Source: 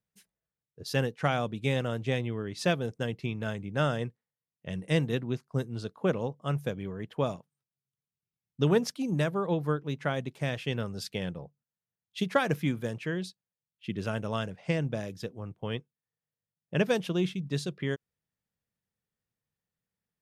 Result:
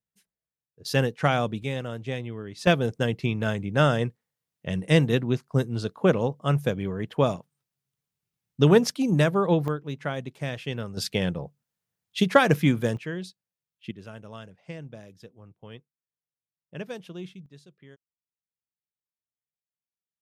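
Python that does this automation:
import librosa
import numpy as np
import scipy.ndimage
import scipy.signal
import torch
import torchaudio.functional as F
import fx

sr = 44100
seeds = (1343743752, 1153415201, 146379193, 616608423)

y = fx.gain(x, sr, db=fx.steps((0.0, -5.5), (0.85, 5.0), (1.63, -2.0), (2.67, 7.0), (9.68, 0.0), (10.97, 8.0), (12.97, -0.5), (13.91, -10.0), (17.46, -19.0)))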